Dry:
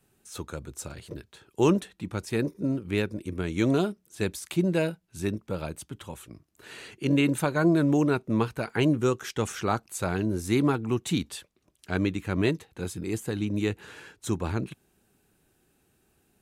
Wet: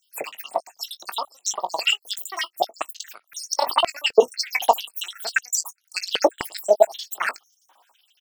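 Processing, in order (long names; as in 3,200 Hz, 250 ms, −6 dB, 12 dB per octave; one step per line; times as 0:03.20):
time-frequency cells dropped at random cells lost 63%
double-tracking delay 39 ms −13 dB
wrong playback speed 7.5 ips tape played at 15 ips
boost into a limiter +18 dB
high-pass on a step sequencer 3.9 Hz 470–6,100 Hz
level −7.5 dB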